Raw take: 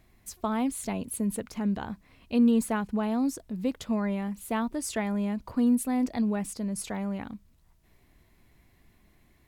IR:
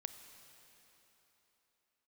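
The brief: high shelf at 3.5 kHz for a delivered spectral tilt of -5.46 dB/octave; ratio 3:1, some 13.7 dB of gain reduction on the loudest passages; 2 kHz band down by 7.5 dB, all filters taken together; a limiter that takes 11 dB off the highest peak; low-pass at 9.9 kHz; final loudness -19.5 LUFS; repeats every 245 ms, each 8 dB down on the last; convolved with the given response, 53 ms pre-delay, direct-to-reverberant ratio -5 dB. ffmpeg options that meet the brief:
-filter_complex "[0:a]lowpass=9900,equalizer=f=2000:t=o:g=-8,highshelf=f=3500:g=-7.5,acompressor=threshold=0.0126:ratio=3,alimiter=level_in=4.22:limit=0.0631:level=0:latency=1,volume=0.237,aecho=1:1:245|490|735|980|1225:0.398|0.159|0.0637|0.0255|0.0102,asplit=2[s0][s1];[1:a]atrim=start_sample=2205,adelay=53[s2];[s1][s2]afir=irnorm=-1:irlink=0,volume=2.51[s3];[s0][s3]amix=inputs=2:normalize=0,volume=8.91"

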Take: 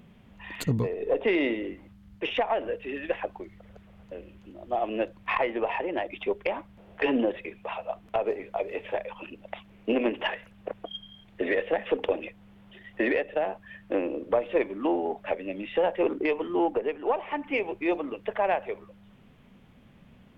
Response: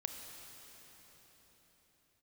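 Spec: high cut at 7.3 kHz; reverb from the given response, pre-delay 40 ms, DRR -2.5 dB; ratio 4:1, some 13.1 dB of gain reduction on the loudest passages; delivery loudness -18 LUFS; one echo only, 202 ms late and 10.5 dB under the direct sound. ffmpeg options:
-filter_complex "[0:a]lowpass=7300,acompressor=threshold=0.0141:ratio=4,aecho=1:1:202:0.299,asplit=2[s0][s1];[1:a]atrim=start_sample=2205,adelay=40[s2];[s1][s2]afir=irnorm=-1:irlink=0,volume=1.5[s3];[s0][s3]amix=inputs=2:normalize=0,volume=7.5"

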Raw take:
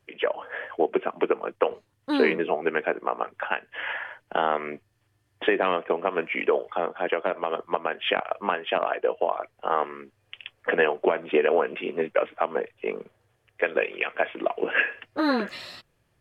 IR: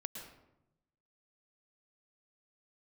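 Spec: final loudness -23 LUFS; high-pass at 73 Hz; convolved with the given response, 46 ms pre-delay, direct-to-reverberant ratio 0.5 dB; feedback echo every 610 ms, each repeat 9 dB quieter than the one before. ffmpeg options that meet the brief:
-filter_complex "[0:a]highpass=73,aecho=1:1:610|1220|1830|2440:0.355|0.124|0.0435|0.0152,asplit=2[s0][s1];[1:a]atrim=start_sample=2205,adelay=46[s2];[s1][s2]afir=irnorm=-1:irlink=0,volume=1.19[s3];[s0][s3]amix=inputs=2:normalize=0,volume=1.06"

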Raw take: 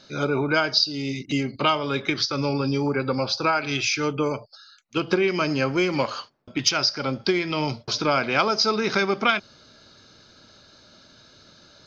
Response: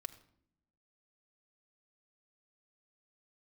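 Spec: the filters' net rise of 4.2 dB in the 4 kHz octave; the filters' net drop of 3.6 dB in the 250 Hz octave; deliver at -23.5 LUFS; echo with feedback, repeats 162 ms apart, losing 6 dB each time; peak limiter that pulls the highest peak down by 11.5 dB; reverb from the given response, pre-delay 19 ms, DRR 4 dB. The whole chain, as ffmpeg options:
-filter_complex "[0:a]equalizer=f=250:t=o:g=-5,equalizer=f=4000:t=o:g=5.5,alimiter=limit=0.237:level=0:latency=1,aecho=1:1:162|324|486|648|810|972:0.501|0.251|0.125|0.0626|0.0313|0.0157,asplit=2[s0][s1];[1:a]atrim=start_sample=2205,adelay=19[s2];[s1][s2]afir=irnorm=-1:irlink=0,volume=0.944[s3];[s0][s3]amix=inputs=2:normalize=0,volume=0.841"

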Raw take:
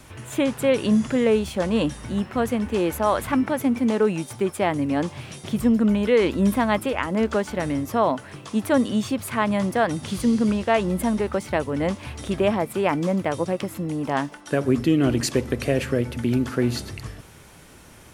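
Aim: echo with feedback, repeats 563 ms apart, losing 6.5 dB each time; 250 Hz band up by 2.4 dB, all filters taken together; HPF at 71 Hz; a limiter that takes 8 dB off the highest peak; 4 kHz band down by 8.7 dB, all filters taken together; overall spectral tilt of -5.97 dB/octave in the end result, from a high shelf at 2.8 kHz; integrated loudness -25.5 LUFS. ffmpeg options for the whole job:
-af "highpass=71,equalizer=f=250:t=o:g=3,highshelf=f=2800:g=-4,equalizer=f=4000:t=o:g=-9,alimiter=limit=0.188:level=0:latency=1,aecho=1:1:563|1126|1689|2252|2815|3378:0.473|0.222|0.105|0.0491|0.0231|0.0109,volume=0.794"

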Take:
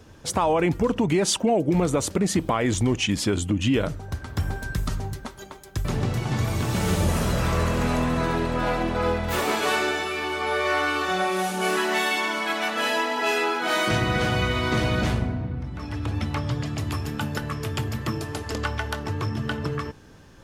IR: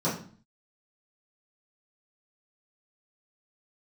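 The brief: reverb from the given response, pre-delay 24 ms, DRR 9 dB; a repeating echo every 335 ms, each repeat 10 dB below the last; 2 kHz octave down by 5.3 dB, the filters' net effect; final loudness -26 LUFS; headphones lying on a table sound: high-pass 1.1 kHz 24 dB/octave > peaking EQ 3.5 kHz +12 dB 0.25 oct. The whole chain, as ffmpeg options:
-filter_complex "[0:a]equalizer=f=2000:t=o:g=-7.5,aecho=1:1:335|670|1005|1340:0.316|0.101|0.0324|0.0104,asplit=2[s0][s1];[1:a]atrim=start_sample=2205,adelay=24[s2];[s1][s2]afir=irnorm=-1:irlink=0,volume=0.1[s3];[s0][s3]amix=inputs=2:normalize=0,highpass=f=1100:w=0.5412,highpass=f=1100:w=1.3066,equalizer=f=3500:t=o:w=0.25:g=12,volume=1.41"

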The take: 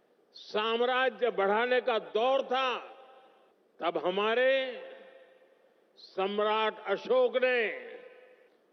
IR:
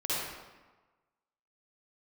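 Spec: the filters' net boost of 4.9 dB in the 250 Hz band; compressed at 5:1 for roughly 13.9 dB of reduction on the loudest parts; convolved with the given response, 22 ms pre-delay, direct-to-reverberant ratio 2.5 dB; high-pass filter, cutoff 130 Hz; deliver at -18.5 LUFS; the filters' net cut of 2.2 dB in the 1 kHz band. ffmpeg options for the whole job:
-filter_complex "[0:a]highpass=130,equalizer=f=250:t=o:g=7,equalizer=f=1000:t=o:g=-3.5,acompressor=threshold=0.0126:ratio=5,asplit=2[s0][s1];[1:a]atrim=start_sample=2205,adelay=22[s2];[s1][s2]afir=irnorm=-1:irlink=0,volume=0.316[s3];[s0][s3]amix=inputs=2:normalize=0,volume=11.2"

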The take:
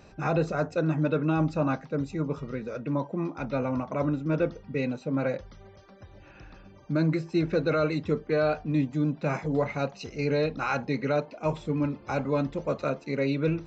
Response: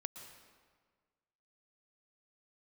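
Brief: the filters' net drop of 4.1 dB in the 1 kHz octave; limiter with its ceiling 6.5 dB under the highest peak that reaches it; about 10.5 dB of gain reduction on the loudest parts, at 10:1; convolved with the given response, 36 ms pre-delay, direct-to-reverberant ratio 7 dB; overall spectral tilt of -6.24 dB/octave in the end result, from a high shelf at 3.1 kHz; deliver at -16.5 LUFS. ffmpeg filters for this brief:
-filter_complex "[0:a]equalizer=f=1000:t=o:g=-7,highshelf=f=3100:g=7,acompressor=threshold=0.0251:ratio=10,alimiter=level_in=1.5:limit=0.0631:level=0:latency=1,volume=0.668,asplit=2[s0][s1];[1:a]atrim=start_sample=2205,adelay=36[s2];[s1][s2]afir=irnorm=-1:irlink=0,volume=0.596[s3];[s0][s3]amix=inputs=2:normalize=0,volume=11.2"

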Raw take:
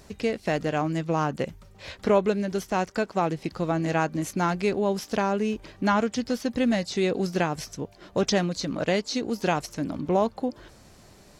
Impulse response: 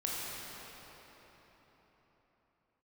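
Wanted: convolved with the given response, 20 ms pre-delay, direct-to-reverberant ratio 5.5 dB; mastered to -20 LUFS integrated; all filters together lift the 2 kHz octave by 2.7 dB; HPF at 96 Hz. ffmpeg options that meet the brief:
-filter_complex "[0:a]highpass=96,equalizer=f=2000:t=o:g=3.5,asplit=2[s0][s1];[1:a]atrim=start_sample=2205,adelay=20[s2];[s1][s2]afir=irnorm=-1:irlink=0,volume=0.282[s3];[s0][s3]amix=inputs=2:normalize=0,volume=1.88"

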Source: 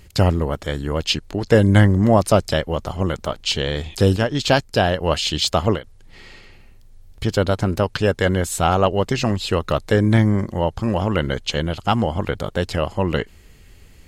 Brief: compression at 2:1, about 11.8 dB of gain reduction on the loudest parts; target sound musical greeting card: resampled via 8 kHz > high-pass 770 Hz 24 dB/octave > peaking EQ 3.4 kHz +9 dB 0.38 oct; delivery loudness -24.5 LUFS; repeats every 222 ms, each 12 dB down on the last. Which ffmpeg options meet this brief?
-af "acompressor=threshold=0.0282:ratio=2,aecho=1:1:222|444|666:0.251|0.0628|0.0157,aresample=8000,aresample=44100,highpass=f=770:w=0.5412,highpass=f=770:w=1.3066,equalizer=f=3400:t=o:w=0.38:g=9,volume=2.51"

